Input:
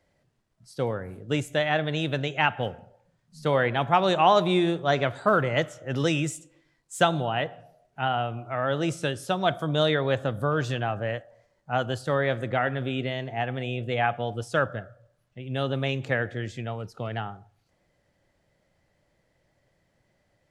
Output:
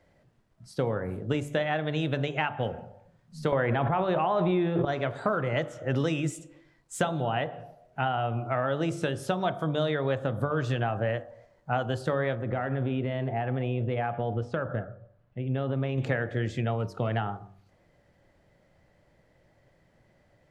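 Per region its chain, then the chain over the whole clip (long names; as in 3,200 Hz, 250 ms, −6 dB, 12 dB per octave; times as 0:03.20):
0:03.52–0:04.85: low-pass filter 2,600 Hz + downward expander −26 dBFS + envelope flattener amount 100%
0:12.35–0:15.98: head-to-tape spacing loss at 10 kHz 25 dB + downward compressor 4 to 1, threshold −30 dBFS
whole clip: downward compressor 6 to 1, threshold −30 dBFS; high-shelf EQ 2,800 Hz −9 dB; hum removal 48.52 Hz, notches 26; level +7 dB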